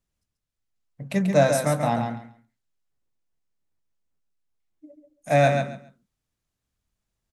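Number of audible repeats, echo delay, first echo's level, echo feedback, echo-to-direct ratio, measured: 3, 137 ms, -6.0 dB, 20%, -6.0 dB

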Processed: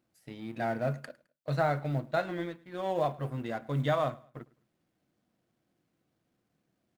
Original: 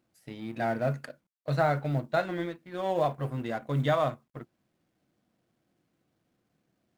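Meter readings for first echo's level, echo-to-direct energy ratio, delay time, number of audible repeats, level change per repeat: -22.5 dB, -22.0 dB, 106 ms, 2, -9.0 dB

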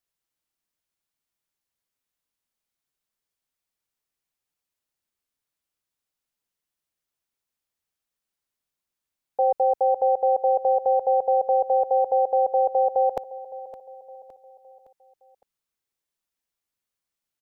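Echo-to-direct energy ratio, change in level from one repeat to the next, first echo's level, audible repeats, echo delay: -16.0 dB, -6.5 dB, -17.0 dB, 3, 563 ms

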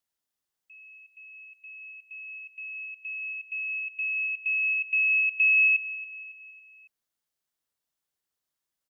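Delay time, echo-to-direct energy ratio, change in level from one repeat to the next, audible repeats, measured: 277 ms, -13.5 dB, -6.5 dB, 4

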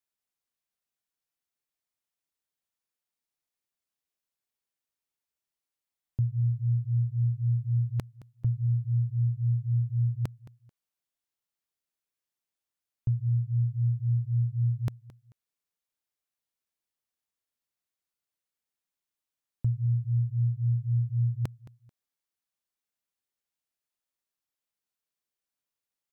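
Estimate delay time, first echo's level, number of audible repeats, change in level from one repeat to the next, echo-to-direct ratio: 219 ms, -18.5 dB, 2, -11.5 dB, -18.0 dB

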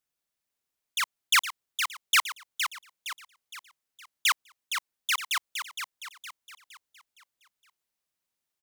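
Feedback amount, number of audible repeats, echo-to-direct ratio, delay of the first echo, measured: 42%, 4, -6.5 dB, 464 ms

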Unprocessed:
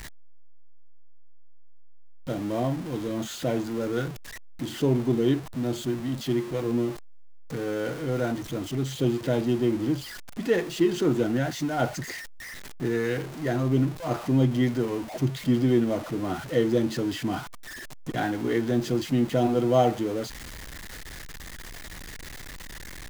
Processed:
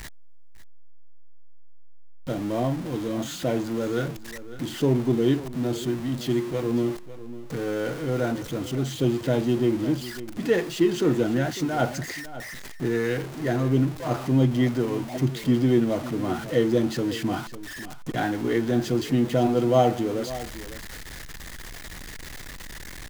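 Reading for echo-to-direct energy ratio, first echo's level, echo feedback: -15.0 dB, -15.0 dB, no regular repeats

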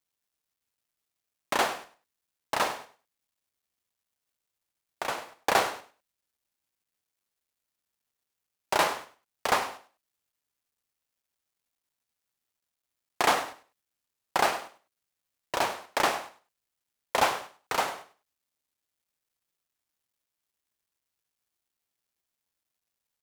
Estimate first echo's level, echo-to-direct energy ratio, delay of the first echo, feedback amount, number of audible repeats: -15.0 dB, -15.0 dB, 100 ms, 21%, 2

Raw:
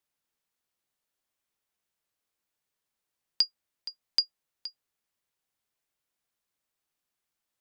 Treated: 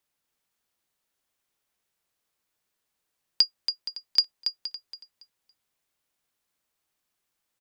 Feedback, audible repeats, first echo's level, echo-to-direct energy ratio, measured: 27%, 3, -7.5 dB, -7.0 dB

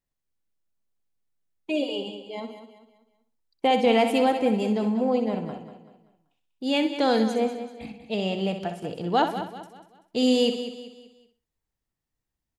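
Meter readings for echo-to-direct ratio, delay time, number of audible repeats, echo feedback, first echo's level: -6.0 dB, 63 ms, 8, no regular repeats, -9.0 dB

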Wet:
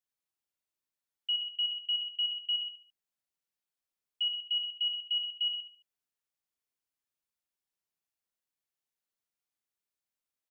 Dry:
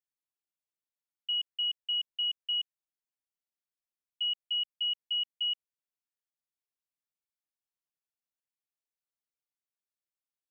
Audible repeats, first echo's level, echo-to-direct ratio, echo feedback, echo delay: 3, -5.5 dB, -5.0 dB, 31%, 72 ms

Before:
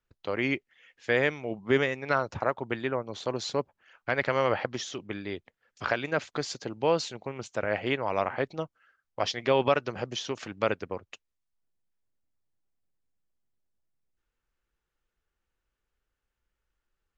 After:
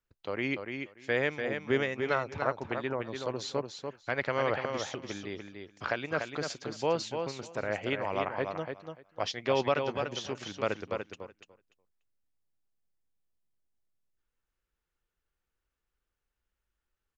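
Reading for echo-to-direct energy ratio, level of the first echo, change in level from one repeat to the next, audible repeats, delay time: -6.0 dB, -6.0 dB, -16.5 dB, 2, 292 ms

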